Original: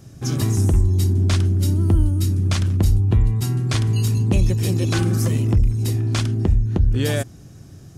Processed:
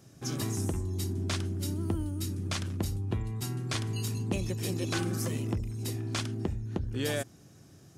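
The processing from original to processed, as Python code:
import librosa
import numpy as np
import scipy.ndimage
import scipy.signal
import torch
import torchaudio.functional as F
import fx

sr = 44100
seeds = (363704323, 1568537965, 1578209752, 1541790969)

y = fx.highpass(x, sr, hz=250.0, slope=6)
y = F.gain(torch.from_numpy(y), -7.0).numpy()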